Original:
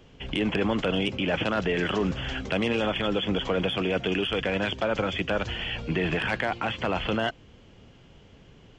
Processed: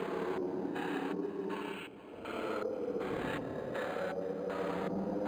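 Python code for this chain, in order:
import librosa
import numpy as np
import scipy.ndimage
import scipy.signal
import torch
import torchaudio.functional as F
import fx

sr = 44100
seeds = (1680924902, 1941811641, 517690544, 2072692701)

y = fx.halfwave_hold(x, sr)
y = scipy.signal.sosfilt(scipy.signal.butter(2, 270.0, 'highpass', fs=sr, output='sos'), y)
y = fx.high_shelf(y, sr, hz=5000.0, db=8.0)
y = fx.over_compress(y, sr, threshold_db=-31.0, ratio=-1.0)
y = fx.paulstretch(y, sr, seeds[0], factor=16.0, window_s=0.1, from_s=4.07)
y = fx.filter_lfo_lowpass(y, sr, shape='square', hz=0.8, low_hz=560.0, high_hz=1700.0, q=0.82)
y = fx.stretch_grains(y, sr, factor=0.6, grain_ms=57.0)
y = y + 10.0 ** (-16.5 / 20.0) * np.pad(y, (int(471 * sr / 1000.0), 0))[:len(y)]
y = np.interp(np.arange(len(y)), np.arange(len(y))[::8], y[::8])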